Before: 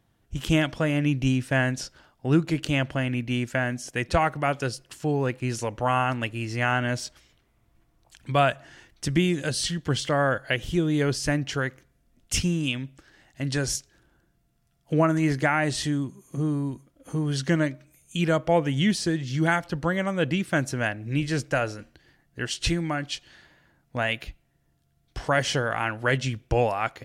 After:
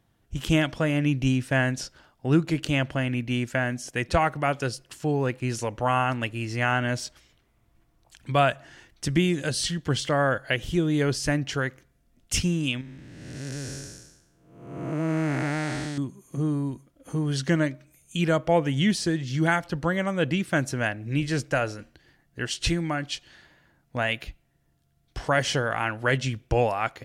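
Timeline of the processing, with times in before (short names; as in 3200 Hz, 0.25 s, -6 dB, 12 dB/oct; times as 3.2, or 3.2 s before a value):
12.81–15.98 time blur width 0.495 s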